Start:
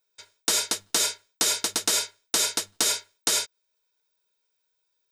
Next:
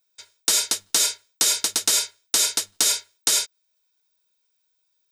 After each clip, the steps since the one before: high shelf 2300 Hz +7.5 dB; gain -2.5 dB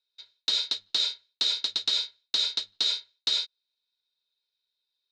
ladder low-pass 4200 Hz, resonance 80%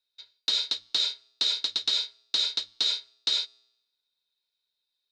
resonator 60 Hz, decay 0.88 s, harmonics odd, mix 30%; gain +3 dB

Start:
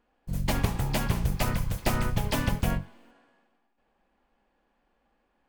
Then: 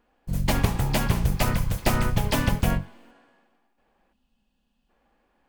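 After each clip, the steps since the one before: spectral gain 4.13–4.89, 260–2500 Hz -14 dB; gain +4 dB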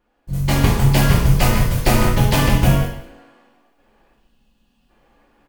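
AGC gain up to 9 dB; echo 0.173 s -16 dB; non-linear reverb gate 0.24 s falling, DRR -3.5 dB; gain -3.5 dB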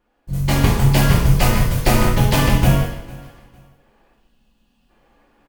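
feedback echo 0.453 s, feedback 27%, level -22.5 dB

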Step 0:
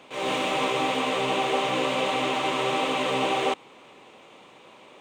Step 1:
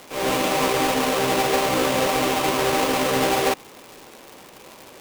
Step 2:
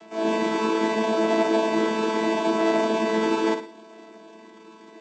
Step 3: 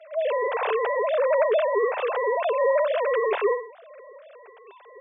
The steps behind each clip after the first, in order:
half-waves squared off; crackle 280/s -31 dBFS
chord vocoder bare fifth, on A3; flutter echo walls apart 9.7 m, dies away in 0.42 s
sine-wave speech; Chebyshev high-pass 380 Hz, order 6

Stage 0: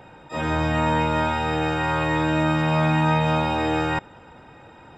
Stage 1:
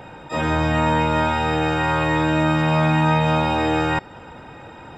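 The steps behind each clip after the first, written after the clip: de-hum 378.7 Hz, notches 36; in parallel at +1.5 dB: compressor, threshold -30 dBFS, peak gain reduction 12.5 dB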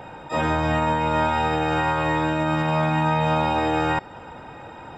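bell 820 Hz +4 dB 1.4 oct; limiter -11.5 dBFS, peak gain reduction 5.5 dB; gain -2 dB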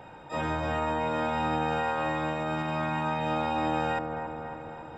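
dark delay 0.277 s, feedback 62%, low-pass 1300 Hz, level -4.5 dB; gain -8 dB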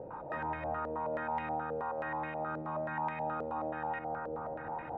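compressor 4:1, threshold -40 dBFS, peak gain reduction 13.5 dB; stepped low-pass 9.4 Hz 500–2100 Hz; gain -1 dB

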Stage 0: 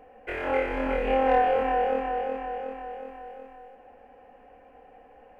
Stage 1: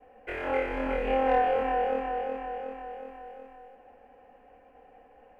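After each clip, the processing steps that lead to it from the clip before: expander -51 dBFS; gain -2.5 dB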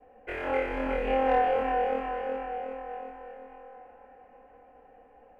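band-limited delay 0.811 s, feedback 42%, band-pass 1200 Hz, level -12 dB; mismatched tape noise reduction decoder only

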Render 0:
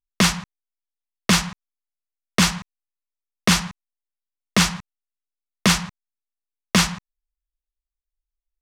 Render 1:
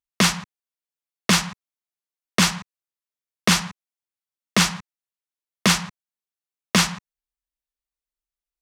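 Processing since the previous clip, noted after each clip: HPF 130 Hz 6 dB/oct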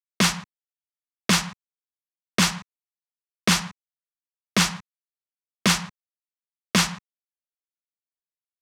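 expander -28 dBFS; gain -2 dB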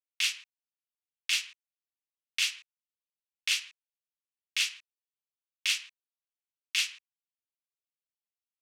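ladder high-pass 2300 Hz, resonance 55%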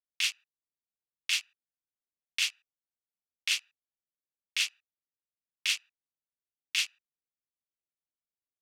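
Wiener smoothing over 41 samples

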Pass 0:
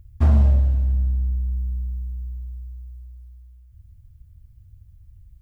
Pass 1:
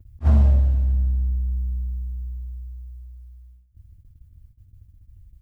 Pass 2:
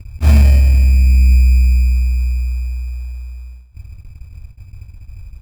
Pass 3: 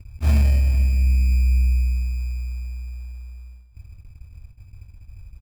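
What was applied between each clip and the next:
gate -47 dBFS, range -12 dB; attack slew limiter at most 450 dB/s
in parallel at +1 dB: negative-ratio compressor -22 dBFS, ratio -0.5; on the sum: sample-and-hold 18×; gain +6 dB
echo 0.445 s -18.5 dB; gain -8 dB

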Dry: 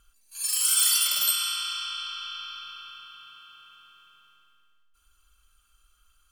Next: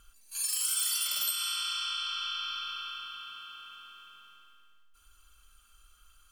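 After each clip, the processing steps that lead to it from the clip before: compressor 3:1, threshold -36 dBFS, peak gain reduction 13 dB; notches 50/100/150 Hz; gain +4 dB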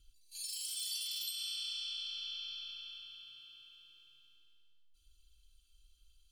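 EQ curve 150 Hz 0 dB, 210 Hz -23 dB, 300 Hz -2 dB, 670 Hz -21 dB, 1200 Hz -29 dB, 4000 Hz +2 dB, 6300 Hz -7 dB, 15000 Hz -11 dB; gain -3.5 dB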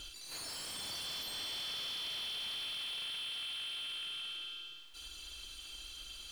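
compressor 2:1, threshold -59 dBFS, peak gain reduction 12.5 dB; overdrive pedal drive 32 dB, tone 2400 Hz, clips at -39.5 dBFS; gain +9 dB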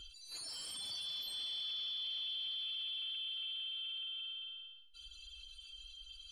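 spectral contrast raised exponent 1.8; upward expander 1.5:1, over -51 dBFS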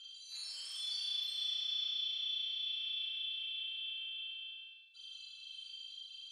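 band-pass 4000 Hz, Q 0.9; on a send: flutter echo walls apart 6.6 m, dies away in 1.2 s

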